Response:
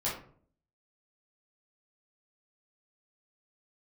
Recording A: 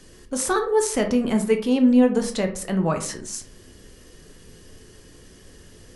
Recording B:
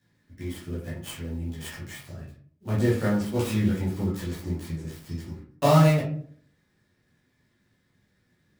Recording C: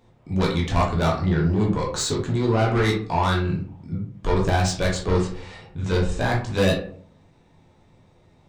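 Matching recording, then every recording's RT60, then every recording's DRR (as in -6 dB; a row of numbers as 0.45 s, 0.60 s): B; 0.55 s, 0.50 s, 0.50 s; 4.5 dB, -8.5 dB, -3.0 dB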